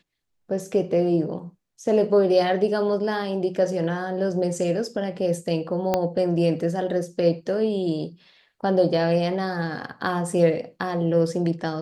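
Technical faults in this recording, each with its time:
5.94 s: pop -8 dBFS

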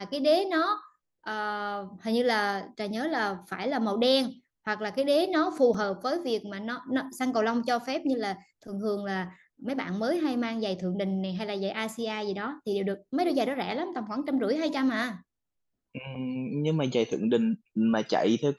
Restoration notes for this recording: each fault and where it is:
5.74 s: dropout 3.8 ms

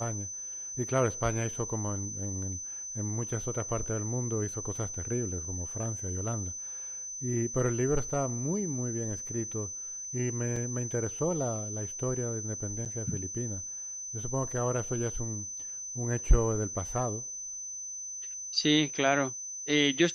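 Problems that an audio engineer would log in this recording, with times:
whine 6.1 kHz -37 dBFS
10.56 s: dropout 4.1 ms
12.85–12.86 s: dropout 7.7 ms

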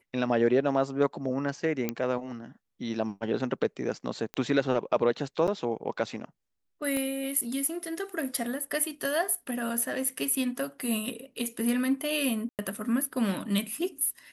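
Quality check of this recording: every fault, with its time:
1.89 s: pop -14 dBFS
4.34 s: pop -20 dBFS
5.47–5.48 s: dropout 7.6 ms
6.97 s: pop -19 dBFS
12.49–12.59 s: dropout 98 ms

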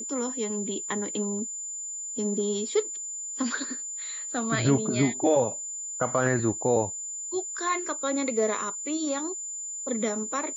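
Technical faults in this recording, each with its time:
whine 7.1 kHz -33 dBFS

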